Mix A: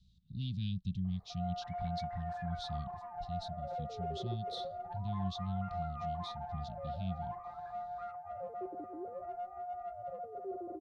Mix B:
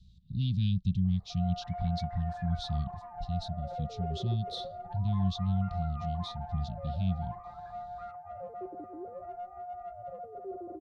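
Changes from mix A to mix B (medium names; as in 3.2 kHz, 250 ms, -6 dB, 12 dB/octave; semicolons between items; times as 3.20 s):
speech +4.5 dB; master: add bass shelf 180 Hz +6 dB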